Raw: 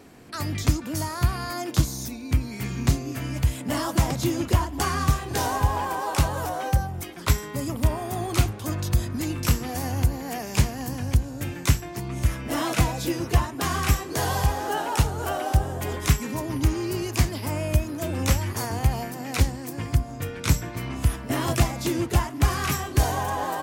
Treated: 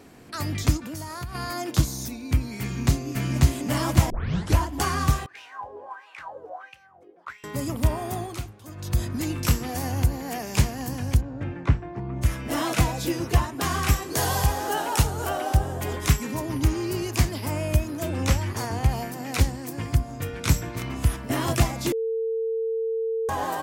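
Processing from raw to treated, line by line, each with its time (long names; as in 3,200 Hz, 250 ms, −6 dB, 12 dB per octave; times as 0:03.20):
0:00.77–0:01.35: downward compressor 4 to 1, threshold −32 dBFS
0:02.61–0:03.51: delay throw 540 ms, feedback 30%, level −0.5 dB
0:04.10: tape start 0.49 s
0:05.26–0:07.44: LFO wah 1.5 Hz 420–2,700 Hz, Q 7.8
0:08.12–0:09.02: duck −13 dB, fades 0.28 s
0:11.20–0:12.21: low-pass filter 2,000 Hz → 1,200 Hz
0:14.02–0:15.27: high-shelf EQ 5,000 Hz +5.5 dB
0:18.09–0:18.89: high-shelf EQ 11,000 Hz −11 dB
0:19.99–0:20.48: delay throw 340 ms, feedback 35%, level −12 dB
0:21.92–0:23.29: beep over 450 Hz −23.5 dBFS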